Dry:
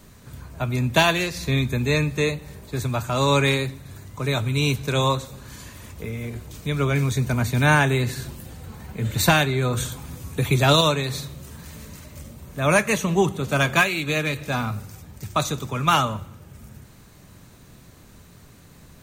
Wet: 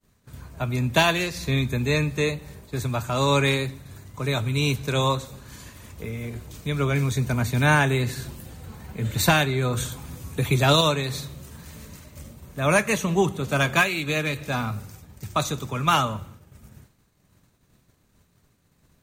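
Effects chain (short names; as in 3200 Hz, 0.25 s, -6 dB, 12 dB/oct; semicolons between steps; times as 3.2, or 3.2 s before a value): expander -38 dBFS; gain -1.5 dB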